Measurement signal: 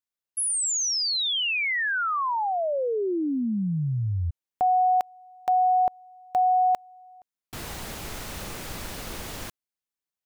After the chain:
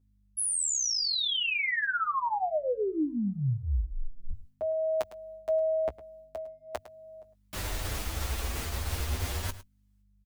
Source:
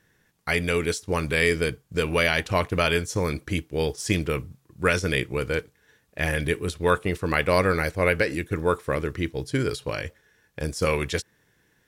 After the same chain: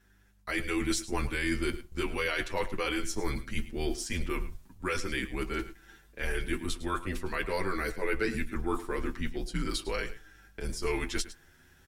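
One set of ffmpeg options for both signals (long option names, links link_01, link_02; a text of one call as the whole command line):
ffmpeg -i in.wav -filter_complex "[0:a]agate=range=-7dB:threshold=-59dB:ratio=16:release=341:detection=rms,asubboost=boost=2:cutoff=120,areverse,acompressor=threshold=-33dB:ratio=6:attack=14:release=144:knee=6:detection=rms,areverse,afreqshift=-100,aeval=exprs='val(0)+0.000355*(sin(2*PI*50*n/s)+sin(2*PI*2*50*n/s)/2+sin(2*PI*3*50*n/s)/3+sin(2*PI*4*50*n/s)/4+sin(2*PI*5*50*n/s)/5)':channel_layout=same,asplit=2[link_01][link_02];[link_02]adelay=16,volume=-13.5dB[link_03];[link_01][link_03]amix=inputs=2:normalize=0,aecho=1:1:106:0.168,asplit=2[link_04][link_05];[link_05]adelay=7.8,afreqshift=0.41[link_06];[link_04][link_06]amix=inputs=2:normalize=1,volume=7dB" out.wav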